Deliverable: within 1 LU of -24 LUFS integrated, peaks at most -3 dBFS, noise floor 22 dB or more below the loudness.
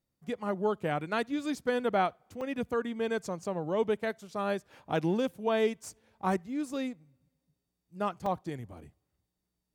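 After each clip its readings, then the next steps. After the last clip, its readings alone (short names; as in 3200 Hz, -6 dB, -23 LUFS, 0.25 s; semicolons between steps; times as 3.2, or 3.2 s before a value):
dropouts 2; longest dropout 3.3 ms; loudness -32.5 LUFS; peak -16.0 dBFS; loudness target -24.0 LUFS
-> interpolate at 2.41/8.26, 3.3 ms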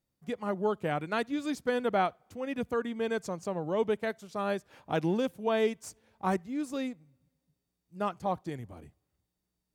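dropouts 0; loudness -32.5 LUFS; peak -16.0 dBFS; loudness target -24.0 LUFS
-> gain +8.5 dB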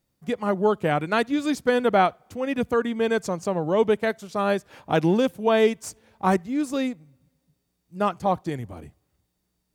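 loudness -24.0 LUFS; peak -7.5 dBFS; noise floor -76 dBFS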